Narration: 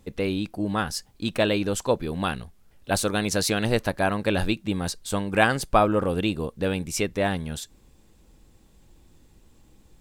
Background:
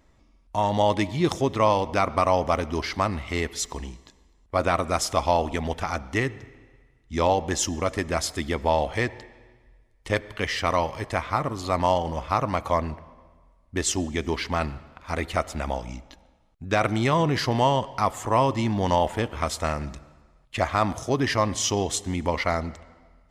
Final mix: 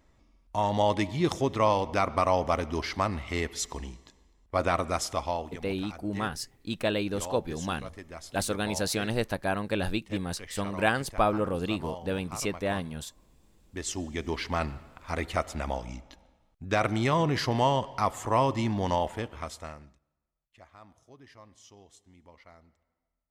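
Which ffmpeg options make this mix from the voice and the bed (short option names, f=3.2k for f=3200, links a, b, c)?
-filter_complex "[0:a]adelay=5450,volume=-5.5dB[a];[1:a]volume=10.5dB,afade=t=out:st=4.81:d=0.83:silence=0.199526,afade=t=in:st=13.4:d=1.15:silence=0.199526,afade=t=out:st=18.65:d=1.34:silence=0.0501187[b];[a][b]amix=inputs=2:normalize=0"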